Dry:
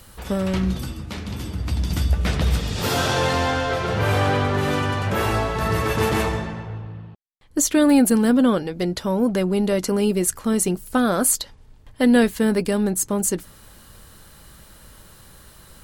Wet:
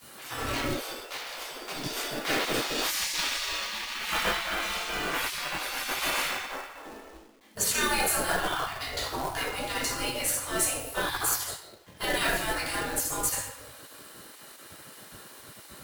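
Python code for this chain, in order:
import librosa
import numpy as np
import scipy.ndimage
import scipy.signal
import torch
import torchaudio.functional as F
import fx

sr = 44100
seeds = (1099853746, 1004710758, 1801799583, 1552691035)

y = fx.room_shoebox(x, sr, seeds[0], volume_m3=310.0, walls='mixed', distance_m=3.2)
y = fx.spec_gate(y, sr, threshold_db=-20, keep='weak')
y = fx.quant_companded(y, sr, bits=4)
y = F.gain(torch.from_numpy(y), -7.0).numpy()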